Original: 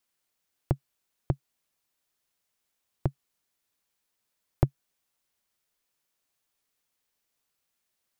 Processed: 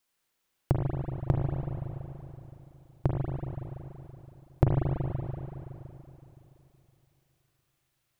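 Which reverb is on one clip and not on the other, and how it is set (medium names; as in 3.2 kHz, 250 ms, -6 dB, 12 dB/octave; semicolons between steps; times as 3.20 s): spring tank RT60 3.3 s, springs 37/47 ms, chirp 35 ms, DRR -2 dB; trim +1 dB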